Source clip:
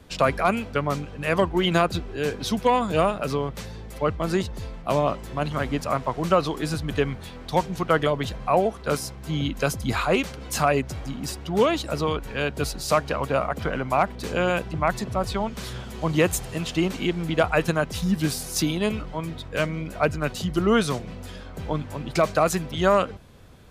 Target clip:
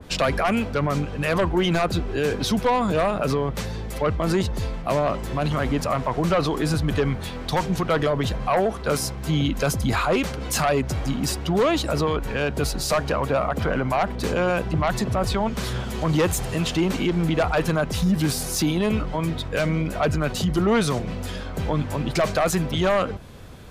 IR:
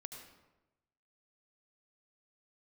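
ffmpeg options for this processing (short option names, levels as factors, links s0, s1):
-af "aeval=exprs='0.398*sin(PI/2*1.78*val(0)/0.398)':c=same,alimiter=limit=0.224:level=0:latency=1:release=28,adynamicequalizer=threshold=0.02:dfrequency=2000:dqfactor=0.7:tfrequency=2000:tqfactor=0.7:attack=5:release=100:ratio=0.375:range=2:mode=cutabove:tftype=highshelf,volume=0.841"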